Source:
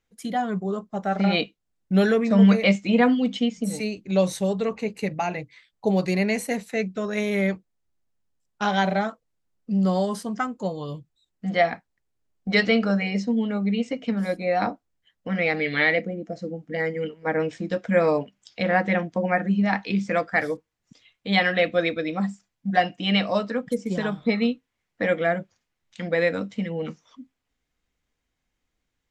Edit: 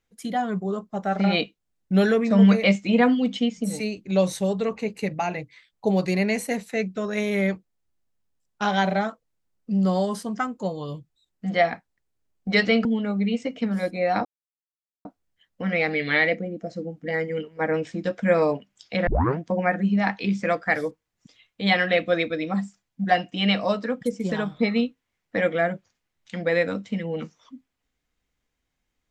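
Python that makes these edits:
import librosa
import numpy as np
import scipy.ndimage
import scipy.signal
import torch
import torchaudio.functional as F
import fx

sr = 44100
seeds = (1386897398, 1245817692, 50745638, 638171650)

y = fx.edit(x, sr, fx.cut(start_s=12.85, length_s=0.46),
    fx.insert_silence(at_s=14.71, length_s=0.8),
    fx.tape_start(start_s=18.73, length_s=0.32), tone=tone)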